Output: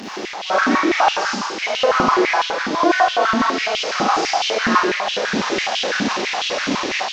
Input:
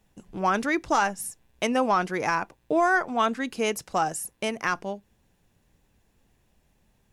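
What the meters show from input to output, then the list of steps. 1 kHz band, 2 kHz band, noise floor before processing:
+9.0 dB, +9.5 dB, -68 dBFS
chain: one-bit delta coder 32 kbps, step -22.5 dBFS; on a send: echo whose repeats swap between lows and highs 231 ms, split 1.2 kHz, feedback 55%, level -14 dB; on the sum: Schroeder reverb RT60 1.5 s, combs from 30 ms, DRR -7 dB; level rider; step-sequenced high-pass 12 Hz 250–3000 Hz; trim -6.5 dB

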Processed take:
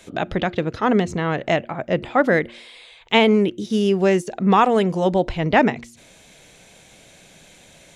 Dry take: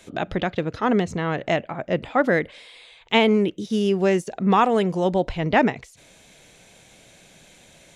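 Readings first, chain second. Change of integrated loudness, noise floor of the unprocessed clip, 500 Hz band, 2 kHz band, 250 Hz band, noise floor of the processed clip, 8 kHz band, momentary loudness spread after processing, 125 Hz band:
+2.5 dB, -52 dBFS, +2.5 dB, +2.5 dB, +2.5 dB, -50 dBFS, +2.5 dB, 8 LU, +2.5 dB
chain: de-hum 117.6 Hz, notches 3; trim +2.5 dB

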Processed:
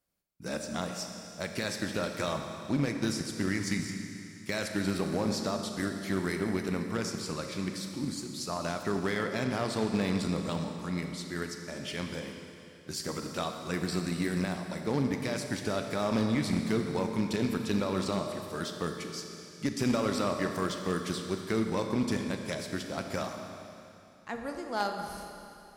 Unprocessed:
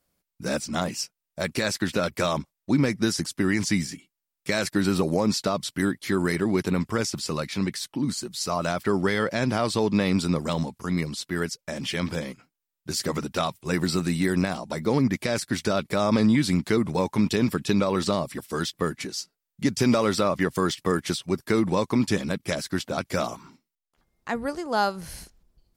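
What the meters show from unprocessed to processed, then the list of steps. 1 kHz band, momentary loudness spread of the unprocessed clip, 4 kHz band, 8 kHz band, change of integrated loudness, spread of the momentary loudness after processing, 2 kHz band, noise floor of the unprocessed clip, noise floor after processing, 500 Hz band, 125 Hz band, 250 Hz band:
-6.5 dB, 8 LU, -7.0 dB, -7.0 dB, -7.0 dB, 9 LU, -6.5 dB, -85 dBFS, -51 dBFS, -7.0 dB, -6.5 dB, -7.0 dB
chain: Schroeder reverb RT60 2.9 s, combs from 28 ms, DRR 3.5 dB; Chebyshev shaper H 3 -20 dB, 4 -29 dB, 6 -19 dB, 8 -25 dB, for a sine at -7.5 dBFS; one-sided clip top -13.5 dBFS; trim -6 dB

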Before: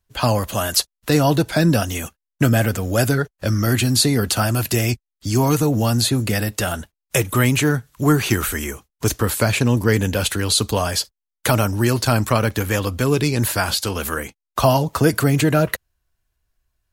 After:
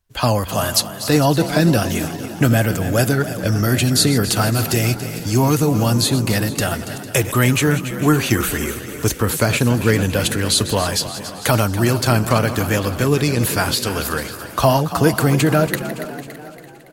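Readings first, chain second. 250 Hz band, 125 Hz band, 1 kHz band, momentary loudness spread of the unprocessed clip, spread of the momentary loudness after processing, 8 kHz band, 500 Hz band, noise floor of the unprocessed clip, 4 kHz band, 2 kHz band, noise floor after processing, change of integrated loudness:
+1.5 dB, +1.5 dB, +1.5 dB, 8 LU, 8 LU, +1.5 dB, +1.5 dB, -84 dBFS, +1.5 dB, +1.5 dB, -35 dBFS, +1.5 dB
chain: backward echo that repeats 226 ms, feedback 61%, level -13.5 dB; frequency-shifting echo 282 ms, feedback 51%, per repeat +47 Hz, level -13 dB; trim +1 dB

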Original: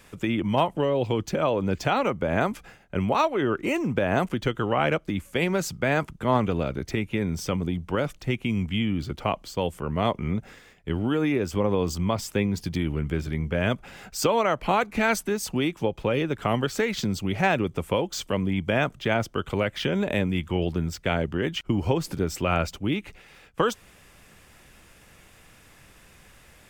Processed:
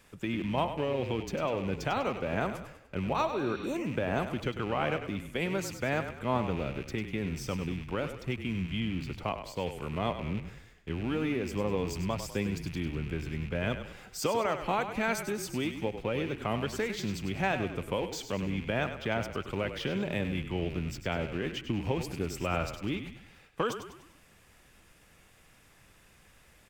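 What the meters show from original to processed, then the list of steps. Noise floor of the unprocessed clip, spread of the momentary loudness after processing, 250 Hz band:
-54 dBFS, 5 LU, -7.0 dB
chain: rattle on loud lows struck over -34 dBFS, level -28 dBFS; frequency-shifting echo 99 ms, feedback 46%, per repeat -33 Hz, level -9.5 dB; spectral replace 3.35–3.73 s, 1.7–5.8 kHz before; trim -7.5 dB

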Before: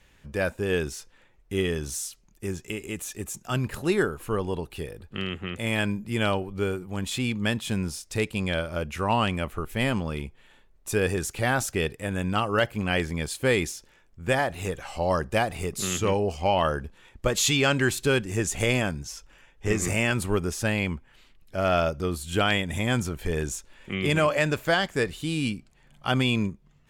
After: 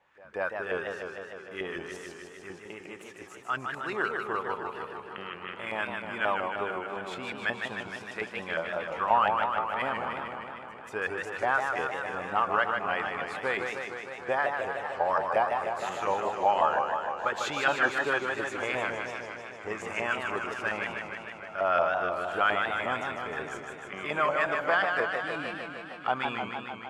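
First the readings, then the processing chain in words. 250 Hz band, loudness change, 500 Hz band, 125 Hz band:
-13.0 dB, -3.5 dB, -4.5 dB, -19.5 dB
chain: reverse echo 190 ms -22 dB; LFO band-pass saw up 5.6 Hz 740–1600 Hz; modulated delay 153 ms, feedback 74%, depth 153 cents, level -5 dB; trim +4 dB

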